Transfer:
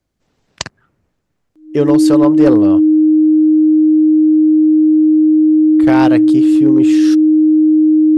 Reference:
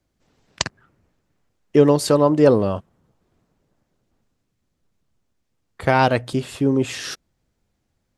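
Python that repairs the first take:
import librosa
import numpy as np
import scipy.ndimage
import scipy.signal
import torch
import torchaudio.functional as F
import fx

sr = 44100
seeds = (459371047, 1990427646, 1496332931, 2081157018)

y = fx.fix_declip(x, sr, threshold_db=-2.5)
y = fx.notch(y, sr, hz=310.0, q=30.0)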